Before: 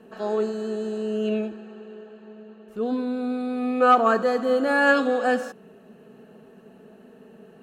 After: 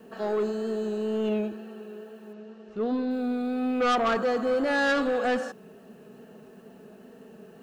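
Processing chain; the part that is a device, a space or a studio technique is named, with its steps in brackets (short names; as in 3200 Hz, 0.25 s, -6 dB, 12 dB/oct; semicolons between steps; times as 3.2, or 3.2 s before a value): compact cassette (soft clip -20.5 dBFS, distortion -9 dB; LPF 8200 Hz; wow and flutter 29 cents; white noise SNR 42 dB); 2.33–3.11 LPF 6100 Hz 24 dB/oct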